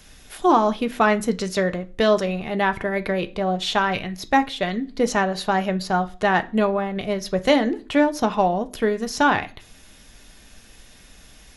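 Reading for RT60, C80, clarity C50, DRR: 0.40 s, 24.5 dB, 19.5 dB, 7.0 dB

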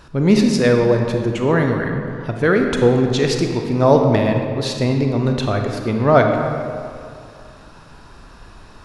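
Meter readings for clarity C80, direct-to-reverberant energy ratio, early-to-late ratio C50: 5.0 dB, 3.0 dB, 4.0 dB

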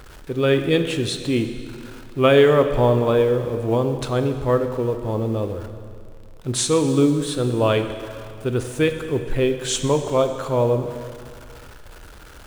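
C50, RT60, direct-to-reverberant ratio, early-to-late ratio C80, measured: 8.5 dB, 2.3 s, 7.0 dB, 9.5 dB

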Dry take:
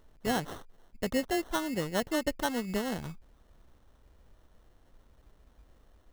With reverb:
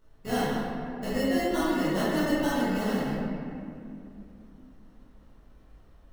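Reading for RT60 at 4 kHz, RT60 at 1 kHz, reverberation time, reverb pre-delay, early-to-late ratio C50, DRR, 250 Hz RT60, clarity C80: 1.4 s, 2.4 s, 2.7 s, 15 ms, -4.5 dB, -11.5 dB, 4.0 s, -2.0 dB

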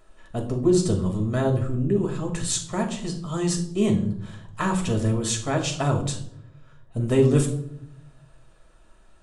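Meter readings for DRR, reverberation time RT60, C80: 0.5 dB, 0.70 s, 13.0 dB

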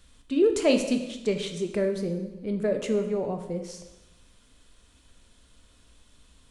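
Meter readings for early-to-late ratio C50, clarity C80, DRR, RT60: 8.0 dB, 10.0 dB, 5.0 dB, 1.1 s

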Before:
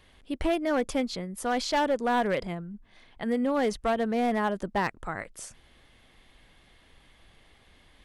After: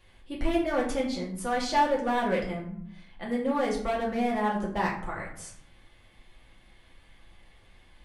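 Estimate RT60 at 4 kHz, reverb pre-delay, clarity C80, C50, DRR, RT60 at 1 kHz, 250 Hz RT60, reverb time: 0.40 s, 3 ms, 10.5 dB, 7.0 dB, -4.5 dB, 0.60 s, 0.80 s, 0.60 s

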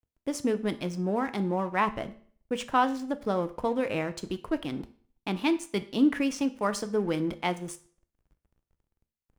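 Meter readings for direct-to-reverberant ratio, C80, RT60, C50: 10.5 dB, 19.5 dB, 0.50 s, 16.0 dB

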